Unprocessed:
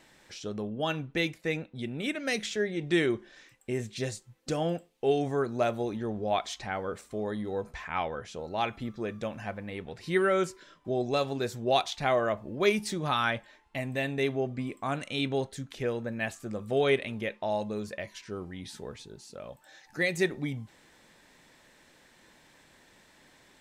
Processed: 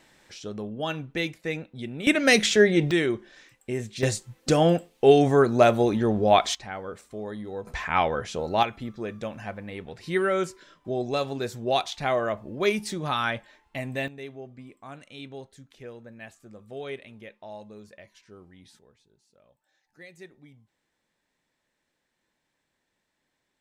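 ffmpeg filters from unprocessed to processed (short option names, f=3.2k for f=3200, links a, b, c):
-af "asetnsamples=n=441:p=0,asendcmd='2.07 volume volume 12dB;2.91 volume volume 2dB;4.03 volume volume 10dB;6.55 volume volume -2dB;7.67 volume volume 8.5dB;8.63 volume volume 1dB;14.08 volume volume -11dB;18.79 volume volume -19dB',volume=0.5dB"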